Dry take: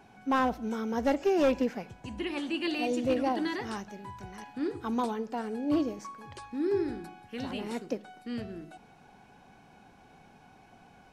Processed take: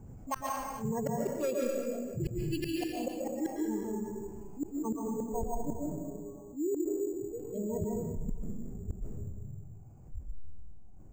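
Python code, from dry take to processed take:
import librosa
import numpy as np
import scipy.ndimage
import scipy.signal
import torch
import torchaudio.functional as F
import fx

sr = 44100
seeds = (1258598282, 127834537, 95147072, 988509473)

y = fx.wiener(x, sr, points=25)
y = fx.dmg_wind(y, sr, seeds[0], corner_hz=180.0, level_db=-36.0)
y = fx.lowpass(y, sr, hz=1100.0, slope=24, at=(4.65, 6.93))
y = fx.noise_reduce_blind(y, sr, reduce_db=28)
y = fx.low_shelf(y, sr, hz=200.0, db=5.0)
y = fx.rider(y, sr, range_db=4, speed_s=0.5)
y = fx.gate_flip(y, sr, shuts_db=-22.0, range_db=-34)
y = fx.rev_freeverb(y, sr, rt60_s=1.1, hf_ratio=0.75, predelay_ms=100, drr_db=-1.5)
y = np.repeat(scipy.signal.resample_poly(y, 1, 6), 6)[:len(y)]
y = fx.env_flatten(y, sr, amount_pct=50)
y = y * librosa.db_to_amplitude(-4.0)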